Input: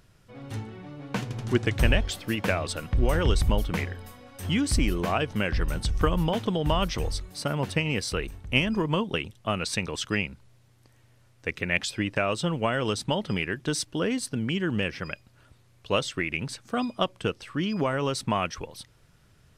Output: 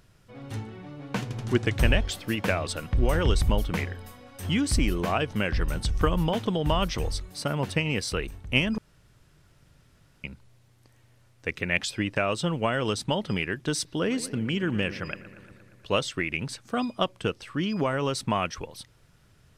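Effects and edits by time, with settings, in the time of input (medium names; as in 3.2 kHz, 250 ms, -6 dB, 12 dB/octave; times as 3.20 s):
8.78–10.24 s: room tone
13.73–15.95 s: bucket-brigade echo 117 ms, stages 2048, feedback 72%, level -16 dB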